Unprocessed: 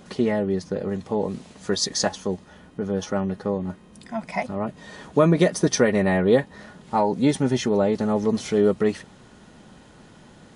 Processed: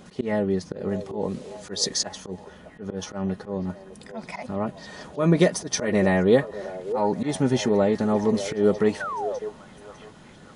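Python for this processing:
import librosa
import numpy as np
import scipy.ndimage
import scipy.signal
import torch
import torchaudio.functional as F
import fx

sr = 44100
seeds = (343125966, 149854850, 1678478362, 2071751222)

y = fx.auto_swell(x, sr, attack_ms=131.0)
y = fx.echo_stepped(y, sr, ms=602, hz=530.0, octaves=0.7, feedback_pct=70, wet_db=-9.5)
y = fx.spec_paint(y, sr, seeds[0], shape='fall', start_s=9.0, length_s=0.39, low_hz=470.0, high_hz=1600.0, level_db=-30.0)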